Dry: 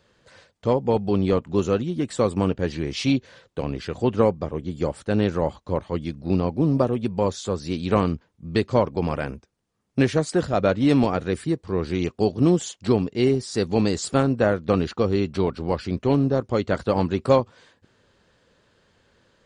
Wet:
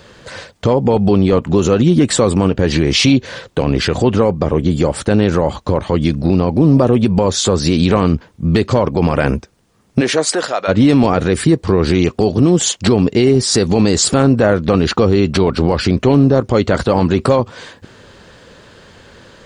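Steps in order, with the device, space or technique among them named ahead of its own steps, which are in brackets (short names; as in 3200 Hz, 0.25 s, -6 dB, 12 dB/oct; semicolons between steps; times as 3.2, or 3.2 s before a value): loud club master (compressor 2:1, threshold -24 dBFS, peak gain reduction 7 dB; hard clip -13 dBFS, distortion -42 dB; maximiser +22 dB); 10–10.67 HPF 260 Hz -> 910 Hz 12 dB/oct; gain -2 dB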